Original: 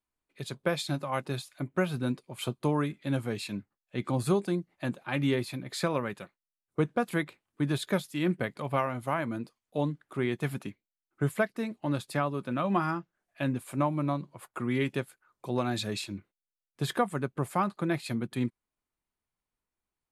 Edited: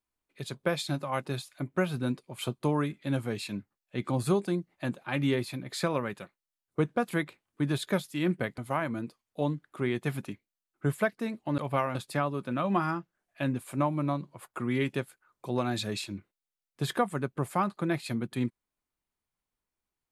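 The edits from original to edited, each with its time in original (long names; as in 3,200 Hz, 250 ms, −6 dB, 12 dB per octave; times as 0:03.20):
0:08.58–0:08.95: move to 0:11.95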